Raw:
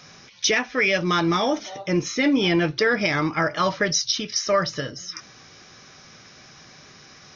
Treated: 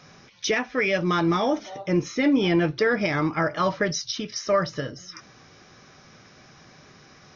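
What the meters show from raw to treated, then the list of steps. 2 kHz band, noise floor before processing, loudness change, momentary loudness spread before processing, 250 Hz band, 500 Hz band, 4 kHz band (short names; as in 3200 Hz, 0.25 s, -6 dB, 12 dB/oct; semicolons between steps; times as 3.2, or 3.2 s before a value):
-4.0 dB, -48 dBFS, -2.0 dB, 9 LU, 0.0 dB, -0.5 dB, -6.5 dB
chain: high shelf 2100 Hz -8.5 dB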